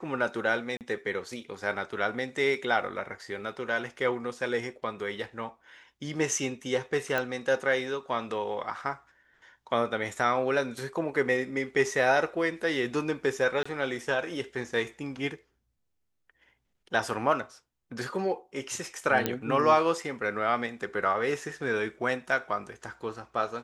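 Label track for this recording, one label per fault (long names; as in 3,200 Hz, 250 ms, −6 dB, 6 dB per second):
0.770000	0.810000	drop-out 38 ms
7.180000	7.180000	click −15 dBFS
13.630000	13.650000	drop-out 25 ms
19.260000	19.260000	click −11 dBFS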